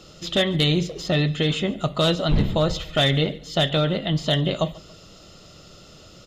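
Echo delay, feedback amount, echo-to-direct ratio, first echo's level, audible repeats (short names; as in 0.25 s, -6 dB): 0.14 s, 38%, -21.5 dB, -22.0 dB, 2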